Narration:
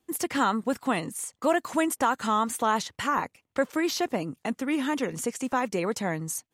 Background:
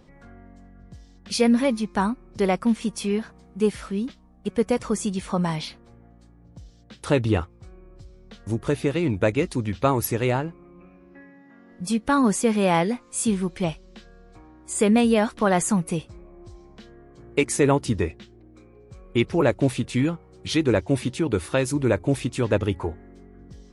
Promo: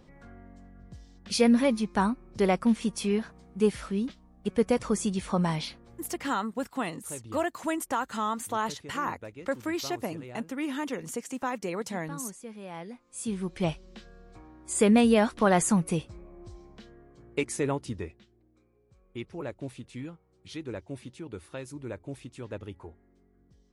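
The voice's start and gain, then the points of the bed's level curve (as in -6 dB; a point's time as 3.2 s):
5.90 s, -5.0 dB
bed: 6.19 s -2.5 dB
6.53 s -22 dB
12.68 s -22 dB
13.69 s -2 dB
16.56 s -2 dB
18.69 s -17 dB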